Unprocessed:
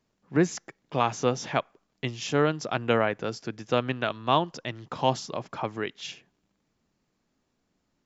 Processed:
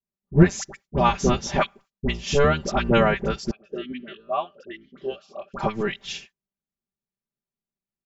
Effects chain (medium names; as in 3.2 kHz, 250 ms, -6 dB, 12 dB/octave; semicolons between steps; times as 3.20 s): octave divider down 1 oct, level +2 dB; gate -51 dBFS, range -28 dB; comb 5.1 ms, depth 91%; phase dispersion highs, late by 62 ms, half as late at 1 kHz; 3.51–5.54 s: talking filter a-i 1.1 Hz; trim +2.5 dB